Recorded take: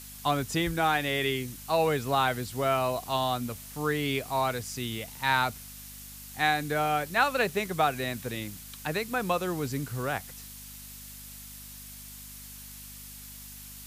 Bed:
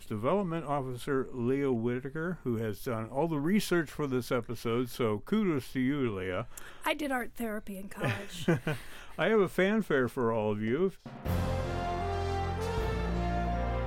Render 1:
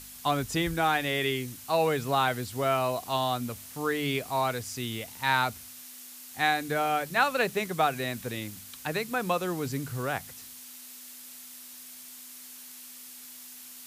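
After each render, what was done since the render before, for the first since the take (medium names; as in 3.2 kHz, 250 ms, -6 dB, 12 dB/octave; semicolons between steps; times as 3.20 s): de-hum 50 Hz, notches 4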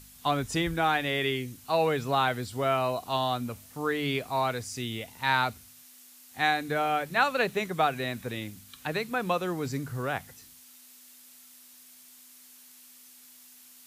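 noise print and reduce 7 dB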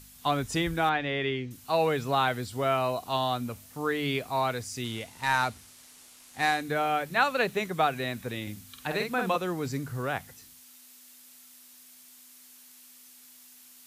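0.89–1.51 s: distance through air 180 m; 4.84–6.62 s: CVSD coder 64 kbps; 8.42–9.36 s: doubling 48 ms -4.5 dB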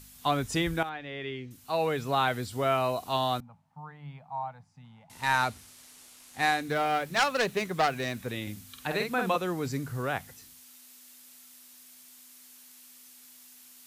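0.83–2.37 s: fade in, from -13 dB; 3.40–5.10 s: two resonant band-passes 370 Hz, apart 2.4 oct; 6.58–8.28 s: self-modulated delay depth 0.17 ms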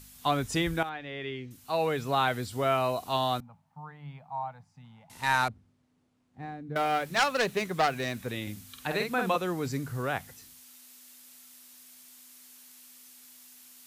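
5.48–6.76 s: band-pass filter 140 Hz, Q 0.99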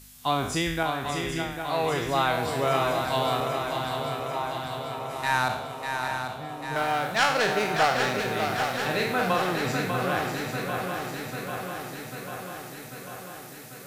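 spectral sustain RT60 0.68 s; on a send: shuffle delay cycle 794 ms, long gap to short 3:1, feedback 67%, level -6 dB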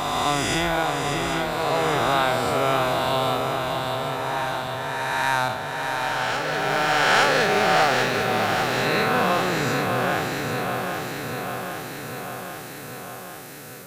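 reverse spectral sustain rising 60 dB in 2.42 s; reverse echo 866 ms -8.5 dB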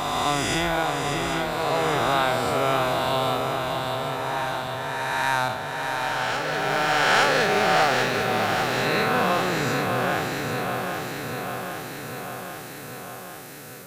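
trim -1 dB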